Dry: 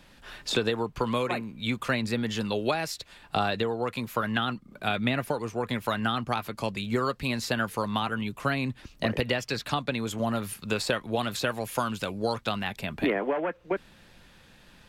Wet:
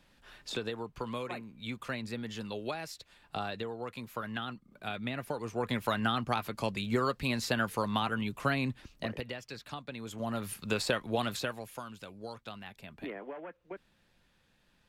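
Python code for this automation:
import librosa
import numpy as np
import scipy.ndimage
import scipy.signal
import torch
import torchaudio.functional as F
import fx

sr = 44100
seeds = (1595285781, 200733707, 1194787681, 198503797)

y = fx.gain(x, sr, db=fx.line((5.12, -10.0), (5.64, -2.5), (8.68, -2.5), (9.33, -13.5), (9.87, -13.5), (10.55, -3.0), (11.29, -3.0), (11.81, -15.0)))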